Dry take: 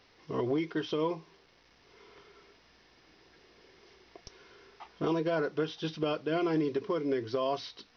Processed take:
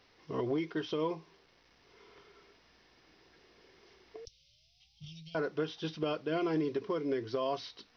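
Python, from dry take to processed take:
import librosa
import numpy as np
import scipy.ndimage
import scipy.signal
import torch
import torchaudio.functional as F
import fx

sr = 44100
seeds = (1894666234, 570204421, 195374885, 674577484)

y = fx.spec_paint(x, sr, seeds[0], shape='rise', start_s=4.14, length_s=1.01, low_hz=430.0, high_hz=970.0, level_db=-45.0)
y = fx.cheby2_bandstop(y, sr, low_hz=250.0, high_hz=1700.0, order=4, stop_db=40, at=(4.25, 5.35))
y = y * 10.0 ** (-2.5 / 20.0)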